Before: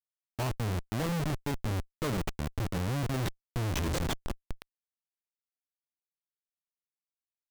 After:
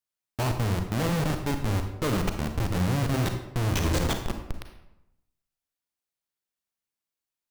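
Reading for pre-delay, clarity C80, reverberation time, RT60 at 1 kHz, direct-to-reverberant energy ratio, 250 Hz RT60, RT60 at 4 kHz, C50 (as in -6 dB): 32 ms, 9.5 dB, 0.85 s, 0.85 s, 5.5 dB, 0.95 s, 0.60 s, 7.0 dB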